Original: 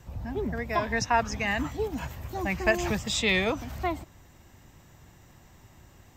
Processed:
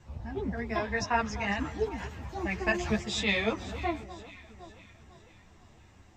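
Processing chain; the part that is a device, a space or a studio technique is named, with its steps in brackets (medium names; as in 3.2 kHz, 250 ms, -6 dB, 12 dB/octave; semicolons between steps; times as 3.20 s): echo whose repeats swap between lows and highs 252 ms, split 1.4 kHz, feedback 69%, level -13 dB; string-machine ensemble chorus (three-phase chorus; low-pass 6.5 kHz 12 dB/octave)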